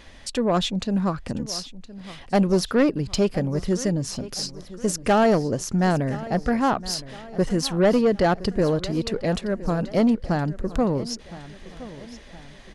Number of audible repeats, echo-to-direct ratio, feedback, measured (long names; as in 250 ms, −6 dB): 3, −16.0 dB, 46%